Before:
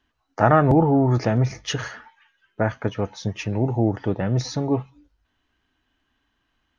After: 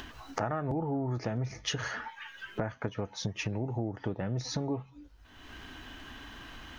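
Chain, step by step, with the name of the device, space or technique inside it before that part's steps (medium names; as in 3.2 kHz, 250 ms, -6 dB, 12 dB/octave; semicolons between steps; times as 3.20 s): upward and downward compression (upward compressor, threshold -20 dBFS; compression 6:1, threshold -26 dBFS, peak gain reduction 15 dB); trim -3.5 dB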